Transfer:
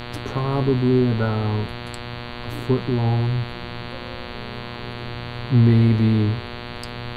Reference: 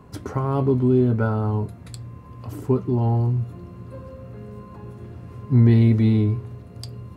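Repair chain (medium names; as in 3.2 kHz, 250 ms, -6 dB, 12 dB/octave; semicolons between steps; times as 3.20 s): de-hum 120.4 Hz, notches 38; noise print and reduce 7 dB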